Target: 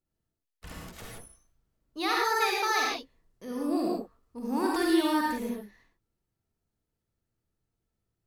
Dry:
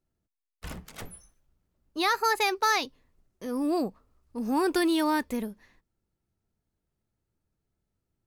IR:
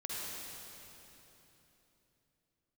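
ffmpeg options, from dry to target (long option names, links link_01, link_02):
-filter_complex "[1:a]atrim=start_sample=2205,afade=type=out:start_time=0.25:duration=0.01,atrim=end_sample=11466,asetrate=48510,aresample=44100[link_01];[0:a][link_01]afir=irnorm=-1:irlink=0"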